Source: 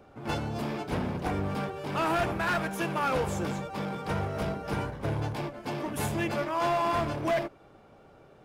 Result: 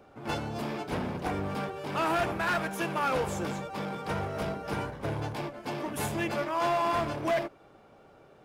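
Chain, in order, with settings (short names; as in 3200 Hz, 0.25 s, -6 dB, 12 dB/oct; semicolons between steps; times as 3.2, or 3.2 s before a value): low shelf 170 Hz -5.5 dB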